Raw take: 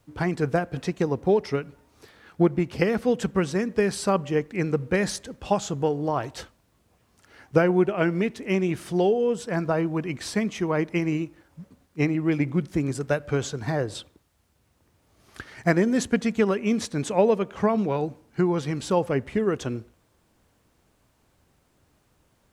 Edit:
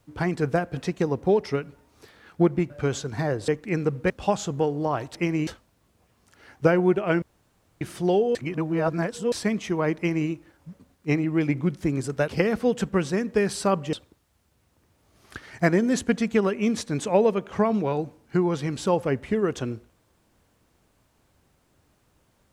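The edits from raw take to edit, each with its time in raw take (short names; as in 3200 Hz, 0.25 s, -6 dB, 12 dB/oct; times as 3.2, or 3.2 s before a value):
2.7–4.35 swap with 13.19–13.97
4.97–5.33 cut
8.13–8.72 room tone
9.26–10.23 reverse
10.88–11.2 copy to 6.38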